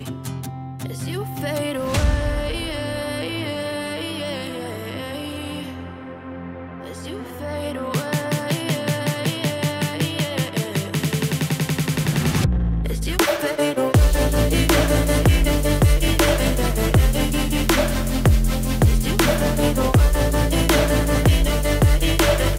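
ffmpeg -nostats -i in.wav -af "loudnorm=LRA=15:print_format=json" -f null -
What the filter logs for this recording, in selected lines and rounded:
"input_i" : "-20.4",
"input_tp" : "-6.6",
"input_lra" : "9.4",
"input_thresh" : "-30.8",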